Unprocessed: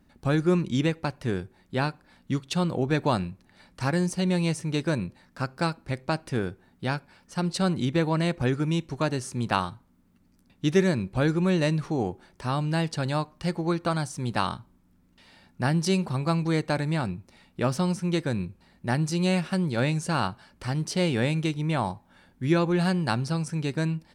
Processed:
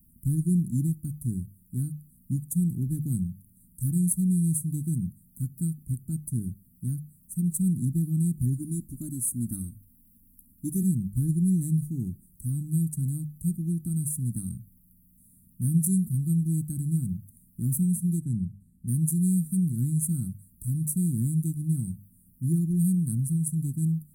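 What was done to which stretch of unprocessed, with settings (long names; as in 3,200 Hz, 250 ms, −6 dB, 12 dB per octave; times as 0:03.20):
0:08.58–0:10.83: comb filter 3.4 ms
0:18.20–0:18.88: high-frequency loss of the air 56 metres
whole clip: inverse Chebyshev band-stop filter 490–5,400 Hz, stop band 50 dB; bass and treble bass −5 dB, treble +15 dB; mains-hum notches 50/100/150/200 Hz; level +7.5 dB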